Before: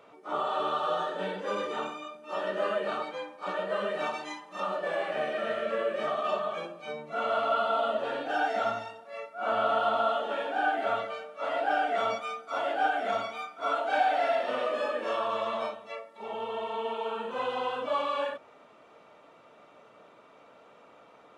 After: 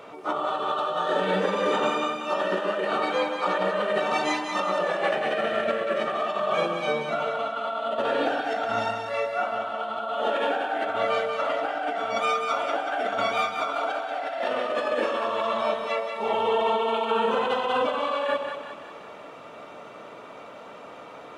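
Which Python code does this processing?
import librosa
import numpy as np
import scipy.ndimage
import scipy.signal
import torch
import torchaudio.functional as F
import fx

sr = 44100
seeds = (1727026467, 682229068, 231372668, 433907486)

p1 = fx.over_compress(x, sr, threshold_db=-35.0, ratio=-1.0)
p2 = p1 + fx.echo_split(p1, sr, split_hz=710.0, low_ms=128, high_ms=186, feedback_pct=52, wet_db=-6.0, dry=0)
y = p2 * 10.0 ** (7.5 / 20.0)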